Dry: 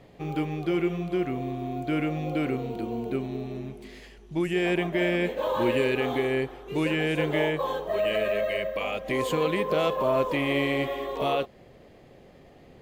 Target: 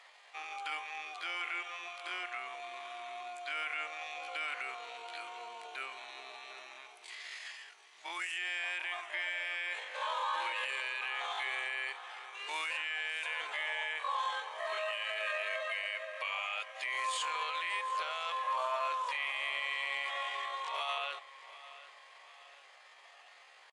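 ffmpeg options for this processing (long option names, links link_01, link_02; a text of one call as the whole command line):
ffmpeg -i in.wav -filter_complex "[0:a]highpass=frequency=980:width=0.5412,highpass=frequency=980:width=1.3066,atempo=0.54,aresample=22050,aresample=44100,asplit=2[link_01][link_02];[link_02]acompressor=threshold=-47dB:ratio=6,volume=-1.5dB[link_03];[link_01][link_03]amix=inputs=2:normalize=0,alimiter=level_in=2.5dB:limit=-24dB:level=0:latency=1:release=20,volume=-2.5dB,asplit=2[link_04][link_05];[link_05]aecho=0:1:746|1492|2238|2984:0.141|0.0692|0.0339|0.0166[link_06];[link_04][link_06]amix=inputs=2:normalize=0" out.wav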